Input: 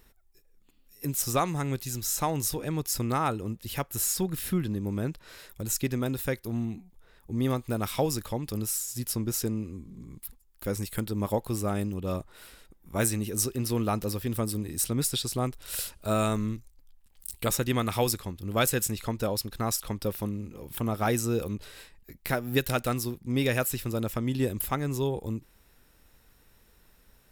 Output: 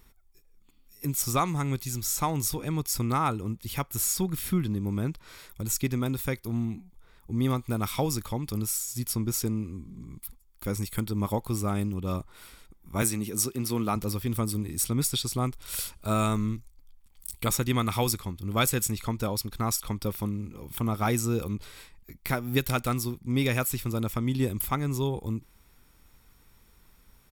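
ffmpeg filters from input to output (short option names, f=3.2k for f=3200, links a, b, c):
-filter_complex "[0:a]asettb=1/sr,asplit=3[a][b][c];[a]atrim=end=13.024[d];[b]atrim=start=13.02:end=13.96,asetpts=PTS-STARTPTS,afade=t=in:d=0.004:c=qsin,afade=t=out:st=0.936:d=0.004:c=qsin,highpass=140[e];[c]atrim=start=13.956[f];[d][e]acrossfade=d=0.004:c1=hsin:c2=qsin[g];[g][f]acrossfade=d=0.004:c1=qsin:c2=hsin,aecho=1:1:0.9:0.36"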